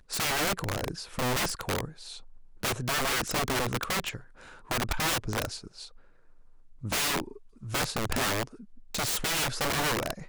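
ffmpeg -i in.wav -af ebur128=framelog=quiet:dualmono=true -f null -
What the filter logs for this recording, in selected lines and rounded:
Integrated loudness:
  I:         -26.5 LUFS
  Threshold: -37.5 LUFS
Loudness range:
  LRA:         2.8 LU
  Threshold: -48.0 LUFS
  LRA low:   -29.6 LUFS
  LRA high:  -26.8 LUFS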